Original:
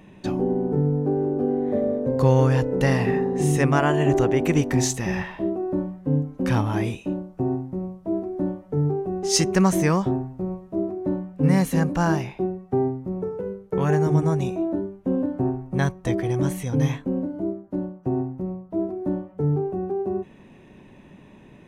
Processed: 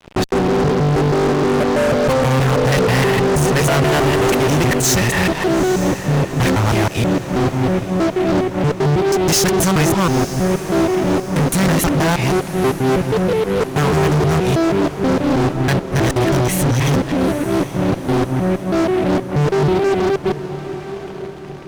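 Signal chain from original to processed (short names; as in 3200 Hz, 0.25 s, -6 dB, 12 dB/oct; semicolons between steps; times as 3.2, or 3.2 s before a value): local time reversal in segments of 0.16 s; dynamic EQ 250 Hz, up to -5 dB, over -35 dBFS, Q 0.83; fuzz box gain 34 dB, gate -43 dBFS; diffused feedback echo 0.899 s, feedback 51%, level -12 dB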